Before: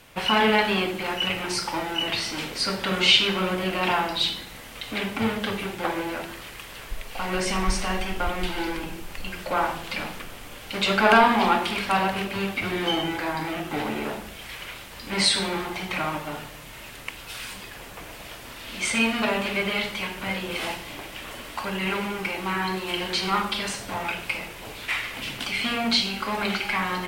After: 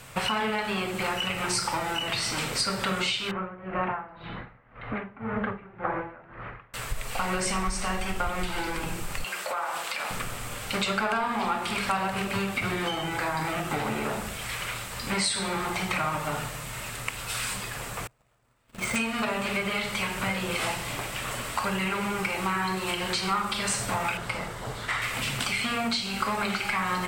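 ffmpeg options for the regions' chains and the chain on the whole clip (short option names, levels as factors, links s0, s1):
-filter_complex "[0:a]asettb=1/sr,asplit=3[s0][s1][s2];[s0]atrim=end=3.314[s3];[s1]atrim=start=3.31:end=6.74,asetpts=PTS-STARTPTS,afade=t=in:d=0.004:c=qsin,afade=t=out:st=3.426:d=0.004:c=qsin,lowpass=f=1900:w=0.5412,lowpass=f=1900:w=1.3066,aeval=exprs='val(0)*pow(10,-21*(0.5-0.5*cos(2*PI*1.9*n/s))/20)':c=same[s4];[s2]atrim=start=6.736[s5];[s3][s4]acrossfade=d=0.004:c1=hsin:c2=qsin[s6];[s6][s5]acrossfade=d=0.004:c1=qsin:c2=hsin,asettb=1/sr,asplit=3[s7][s8][s9];[s7]atrim=end=9.244[s10];[s8]atrim=start=9.24:end=10.11,asetpts=PTS-STARTPTS,afade=t=in:d=0.004:c=qsin,afade=t=out:st=0.866:d=0.004:c=qsin,highpass=520,acompressor=threshold=0.0282:ratio=10:attack=3.2:release=140:knee=1:detection=peak[s11];[s9]atrim=start=10.106[s12];[s10][s11]acrossfade=d=0.004:c1=hsin:c2=qsin[s13];[s13][s12]acrossfade=d=0.004:c1=qsin:c2=hsin,asettb=1/sr,asplit=3[s14][s15][s16];[s14]atrim=end=18.074[s17];[s15]atrim=start=18.07:end=18.96,asetpts=PTS-STARTPTS,afade=t=in:d=0.004:c=qsin,afade=t=out:st=0.886:d=0.004:c=qsin,lowpass=f=1100:p=1,agate=range=0.0316:threshold=0.0112:ratio=16:release=100:detection=peak,acrusher=bits=2:mode=log:mix=0:aa=0.000001[s18];[s16]atrim=start=18.956[s19];[s17][s18]acrossfade=d=0.004:c1=hsin:c2=qsin[s20];[s20][s19]acrossfade=d=0.004:c1=qsin:c2=hsin,asettb=1/sr,asplit=3[s21][s22][s23];[s21]atrim=end=24.174[s24];[s22]atrim=start=24.17:end=25.02,asetpts=PTS-STARTPTS,afade=t=in:d=0.004:c=qsin,afade=t=out:st=0.846:d=0.004:c=qsin,lowpass=f=3200:p=1,equalizer=f=2500:w=5.5:g=-13.5[s25];[s23]atrim=start=25.016[s26];[s24][s25]acrossfade=d=0.004:c1=hsin:c2=qsin[s27];[s27][s26]acrossfade=d=0.004:c1=qsin:c2=hsin,acompressor=threshold=0.0355:ratio=8,equalizer=f=125:t=o:w=0.33:g=10,equalizer=f=315:t=o:w=0.33:g=-7,equalizer=f=1250:t=o:w=0.33:g=5,equalizer=f=3150:t=o:w=0.33:g=-3,equalizer=f=8000:t=o:w=0.33:g=9,volume=1.58"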